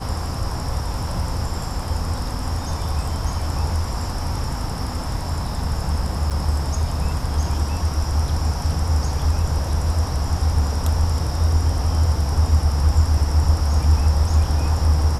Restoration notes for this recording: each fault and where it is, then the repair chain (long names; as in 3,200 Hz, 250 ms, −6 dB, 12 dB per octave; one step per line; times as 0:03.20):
0:06.30–0:06.31: drop-out 7 ms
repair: repair the gap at 0:06.30, 7 ms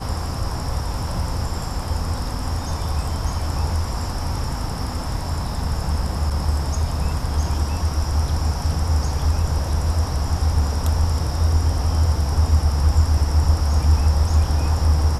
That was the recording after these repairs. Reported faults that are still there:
none of them is left